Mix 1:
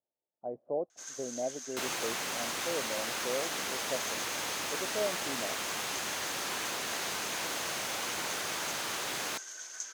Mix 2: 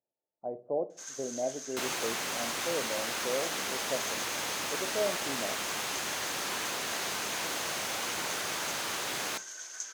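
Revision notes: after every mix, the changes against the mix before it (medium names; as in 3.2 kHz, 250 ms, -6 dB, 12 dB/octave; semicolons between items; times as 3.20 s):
reverb: on, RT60 0.35 s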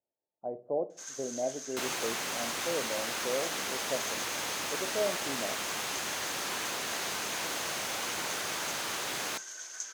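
second sound: send -6.0 dB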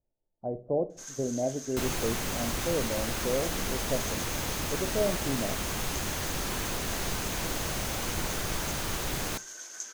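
master: remove frequency weighting A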